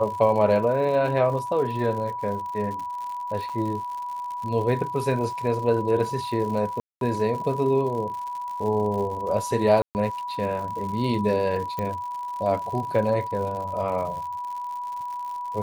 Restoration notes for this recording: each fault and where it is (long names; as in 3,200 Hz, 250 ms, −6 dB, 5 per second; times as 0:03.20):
surface crackle 120 per second −33 dBFS
whistle 980 Hz −29 dBFS
0:03.49–0:03.50: drop-out 5.3 ms
0:06.80–0:07.01: drop-out 212 ms
0:09.82–0:09.95: drop-out 129 ms
0:11.79: click −16 dBFS